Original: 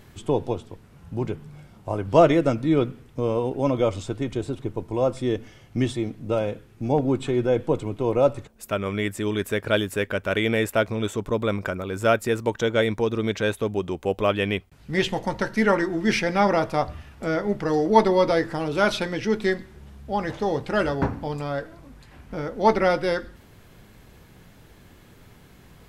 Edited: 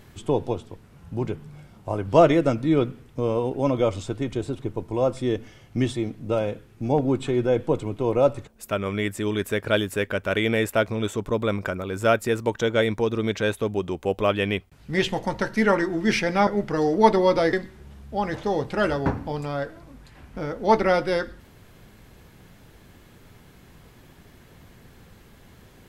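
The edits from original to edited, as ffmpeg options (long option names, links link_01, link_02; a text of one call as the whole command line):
ffmpeg -i in.wav -filter_complex "[0:a]asplit=3[link_01][link_02][link_03];[link_01]atrim=end=16.472[link_04];[link_02]atrim=start=17.388:end=18.452[link_05];[link_03]atrim=start=19.488[link_06];[link_04][link_05]acrossfade=duration=0.004:curve1=hsin:curve2=hsin[link_07];[link_07][link_06]acrossfade=duration=0.004:curve1=hsin:curve2=hsin" out.wav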